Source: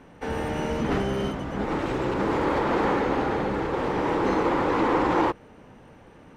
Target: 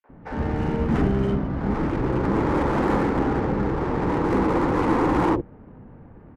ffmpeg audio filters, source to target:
-filter_complex "[0:a]acrossover=split=240|3000[a][b][c];[c]acrusher=bits=6:mix=0:aa=0.000001[d];[a][b][d]amix=inputs=3:normalize=0,acrossover=split=530|4400[e][f][g];[f]adelay=40[h];[e]adelay=90[i];[i][h][g]amix=inputs=3:normalize=0,adynamicsmooth=sensitivity=8:basefreq=1.6k,lowshelf=f=310:g=9"

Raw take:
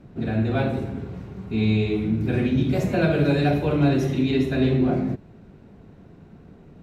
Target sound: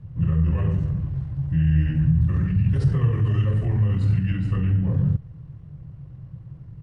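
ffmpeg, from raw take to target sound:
-af "alimiter=limit=-18dB:level=0:latency=1:release=39,lowshelf=f=250:t=q:w=3:g=8.5,asetrate=32097,aresample=44100,atempo=1.37395,volume=-3.5dB"

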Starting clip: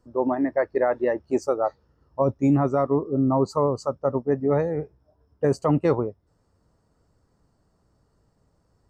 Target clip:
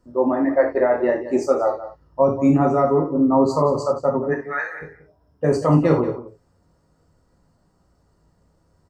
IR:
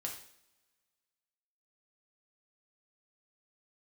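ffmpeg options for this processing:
-filter_complex "[0:a]asplit=3[a][b][c];[a]afade=t=out:st=4.31:d=0.02[d];[b]highpass=f=1.6k:t=q:w=5.5,afade=t=in:st=4.31:d=0.02,afade=t=out:st=4.81:d=0.02[e];[c]afade=t=in:st=4.81:d=0.02[f];[d][e][f]amix=inputs=3:normalize=0,asplit=2[g][h];[h]adelay=180.8,volume=-13dB,highshelf=f=4k:g=-4.07[i];[g][i]amix=inputs=2:normalize=0[j];[1:a]atrim=start_sample=2205,atrim=end_sample=4410[k];[j][k]afir=irnorm=-1:irlink=0,volume=5dB"

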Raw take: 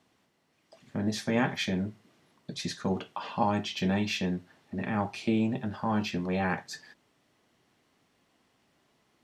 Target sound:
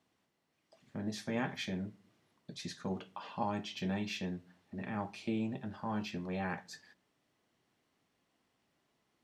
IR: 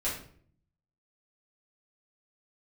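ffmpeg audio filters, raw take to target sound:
-filter_complex "[0:a]asplit=2[a][b];[1:a]atrim=start_sample=2205,adelay=6[c];[b][c]afir=irnorm=-1:irlink=0,volume=-26.5dB[d];[a][d]amix=inputs=2:normalize=0,volume=-8.5dB"

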